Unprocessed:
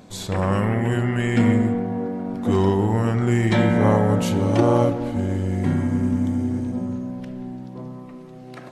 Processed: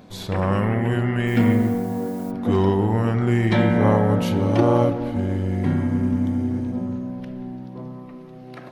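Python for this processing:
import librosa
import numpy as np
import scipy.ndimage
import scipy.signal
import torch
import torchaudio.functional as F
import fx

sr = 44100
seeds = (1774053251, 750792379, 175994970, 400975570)

y = fx.peak_eq(x, sr, hz=7600.0, db=-10.5, octaves=0.65)
y = fx.dmg_noise_colour(y, sr, seeds[0], colour='blue', level_db=-49.0, at=(1.26, 2.3), fade=0.02)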